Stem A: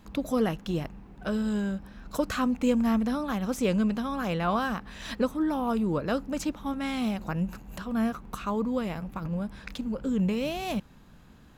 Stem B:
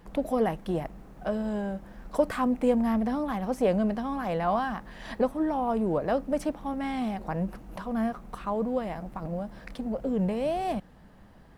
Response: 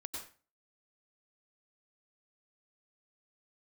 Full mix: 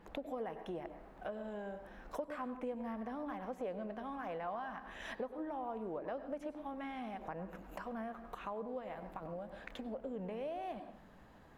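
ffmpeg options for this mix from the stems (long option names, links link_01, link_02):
-filter_complex "[0:a]alimiter=level_in=1dB:limit=-24dB:level=0:latency=1:release=165,volume=-1dB,adynamicequalizer=threshold=0.00251:dfrequency=2100:dqfactor=0.7:tfrequency=2100:tqfactor=0.7:attack=5:release=100:ratio=0.375:range=1.5:mode=cutabove:tftype=highshelf,volume=-11dB[link_01];[1:a]bass=frequency=250:gain=-9,treble=frequency=4000:gain=-13,volume=-1,volume=-5.5dB,asplit=3[link_02][link_03][link_04];[link_03]volume=-4.5dB[link_05];[link_04]apad=whole_len=510629[link_06];[link_01][link_06]sidechaincompress=threshold=-40dB:ratio=8:attack=6.6:release=317[link_07];[2:a]atrim=start_sample=2205[link_08];[link_05][link_08]afir=irnorm=-1:irlink=0[link_09];[link_07][link_02][link_09]amix=inputs=3:normalize=0,acompressor=threshold=-42dB:ratio=3"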